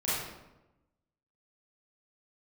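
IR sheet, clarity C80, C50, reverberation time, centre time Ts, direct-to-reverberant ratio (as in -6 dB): 2.0 dB, -2.5 dB, 1.0 s, 85 ms, -11.0 dB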